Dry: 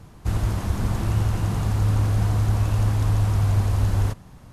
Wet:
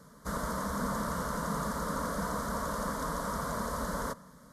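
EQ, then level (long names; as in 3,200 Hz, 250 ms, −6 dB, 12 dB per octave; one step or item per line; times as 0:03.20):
high-pass filter 240 Hz 6 dB per octave
dynamic equaliser 900 Hz, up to +6 dB, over −51 dBFS, Q 0.92
phaser with its sweep stopped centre 520 Hz, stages 8
0.0 dB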